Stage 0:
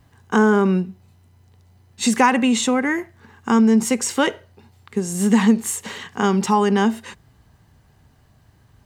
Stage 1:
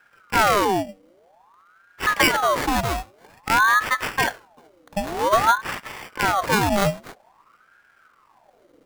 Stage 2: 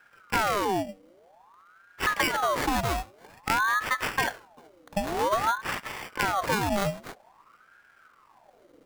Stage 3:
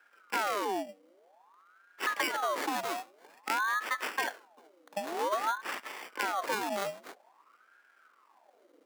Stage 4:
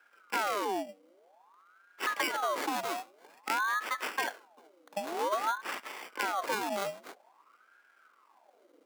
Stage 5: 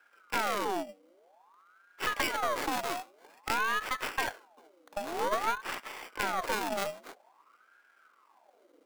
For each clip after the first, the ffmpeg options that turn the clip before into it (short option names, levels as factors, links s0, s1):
-af "acrusher=samples=17:mix=1:aa=0.000001,aeval=exprs='val(0)*sin(2*PI*960*n/s+960*0.6/0.51*sin(2*PI*0.51*n/s))':c=same"
-af "acompressor=threshold=0.0891:ratio=5,volume=0.891"
-af "highpass=f=270:w=0.5412,highpass=f=270:w=1.3066,volume=0.531"
-af "bandreject=f=1800:w=19"
-af "aeval=exprs='0.211*(cos(1*acos(clip(val(0)/0.211,-1,1)))-cos(1*PI/2))+0.0266*(cos(6*acos(clip(val(0)/0.211,-1,1)))-cos(6*PI/2))':c=same"